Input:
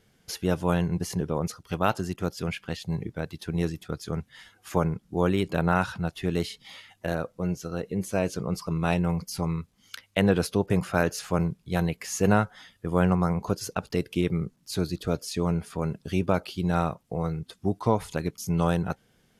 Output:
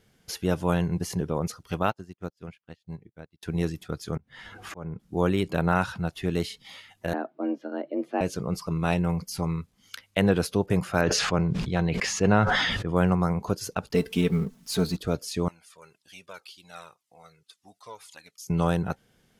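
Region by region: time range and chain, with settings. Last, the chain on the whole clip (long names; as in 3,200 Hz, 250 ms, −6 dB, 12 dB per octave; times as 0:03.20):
0:01.83–0:03.43: high-shelf EQ 5,500 Hz −5 dB + expander for the loud parts 2.5 to 1, over −47 dBFS
0:04.16–0:05.00: low-pass filter 1,500 Hz 6 dB per octave + upward compression, threshold −28 dBFS + volume swells 345 ms
0:07.13–0:08.21: high-frequency loss of the air 430 metres + frequency shifter +140 Hz
0:11.01–0:12.96: low-pass filter 4,600 Hz + level that may fall only so fast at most 24 dB per second
0:13.94–0:14.97: mu-law and A-law mismatch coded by mu + comb filter 4.5 ms, depth 75%
0:15.48–0:18.50: resonant band-pass 6,500 Hz, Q 0.51 + flanger whose copies keep moving one way falling 1.9 Hz
whole clip: no processing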